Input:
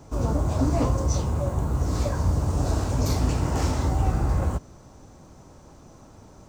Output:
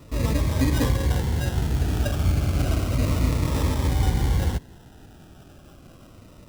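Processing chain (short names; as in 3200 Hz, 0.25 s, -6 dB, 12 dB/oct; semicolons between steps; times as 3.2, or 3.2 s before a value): sample-rate reducer 2200 Hz, jitter 0%; cascading phaser falling 0.31 Hz; gain +1.5 dB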